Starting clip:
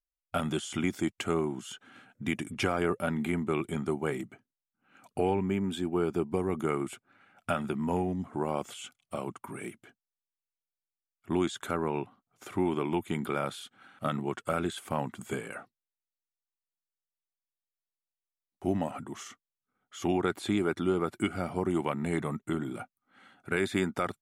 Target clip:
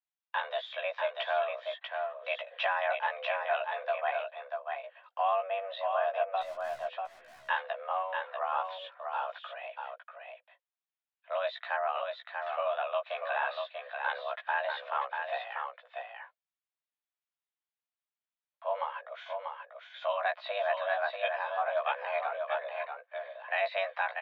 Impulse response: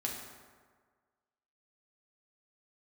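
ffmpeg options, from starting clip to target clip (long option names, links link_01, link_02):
-filter_complex "[0:a]highpass=frequency=320:width_type=q:width=0.5412,highpass=frequency=320:width_type=q:width=1.307,lowpass=frequency=3500:width_type=q:width=0.5176,lowpass=frequency=3500:width_type=q:width=0.7071,lowpass=frequency=3500:width_type=q:width=1.932,afreqshift=290,asettb=1/sr,asplit=3[link_01][link_02][link_03];[link_01]atrim=end=6.414[link_04];[link_02]atrim=start=6.41:end=6.87,asetpts=PTS-STARTPTS,afade=type=in:duration=0.004:curve=qsin,afade=type=out:start_time=0.456:duration=0.004:curve=qsin,aeval=exprs='(tanh(316*val(0)+0.15)-tanh(0.15))/316':channel_layout=same[link_05];[link_03]atrim=start=6.866[link_06];[link_04][link_05]acrossfade=duration=0.004:curve1=hsin:curve2=qsin[link_07];[link_07][link_06]acrossfade=duration=0.004:curve1=qsin:curve2=hsin,asplit=2[link_08][link_09];[link_09]adelay=16,volume=-3dB[link_10];[link_08][link_10]amix=inputs=2:normalize=0,aecho=1:1:640:0.562,volume=-1.5dB"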